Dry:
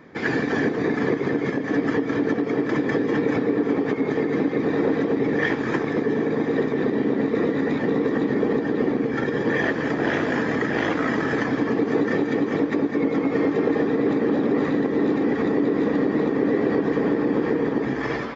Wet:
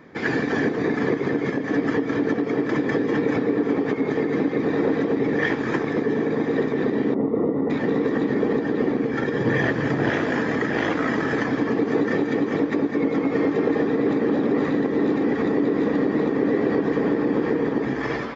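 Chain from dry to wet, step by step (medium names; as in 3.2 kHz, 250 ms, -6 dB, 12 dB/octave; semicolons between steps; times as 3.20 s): 7.14–7.70 s: Savitzky-Golay filter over 65 samples; 9.40–10.10 s: peaking EQ 120 Hz +11 dB 0.69 oct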